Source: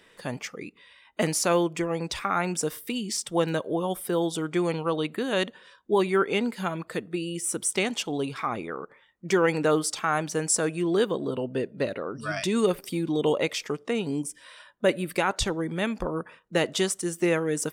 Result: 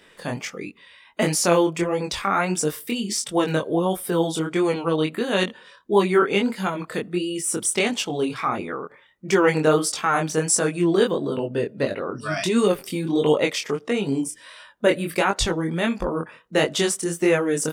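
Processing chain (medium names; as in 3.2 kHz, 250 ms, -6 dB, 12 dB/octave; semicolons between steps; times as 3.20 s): chorus 1.5 Hz, delay 20 ms, depth 5.7 ms; trim +7.5 dB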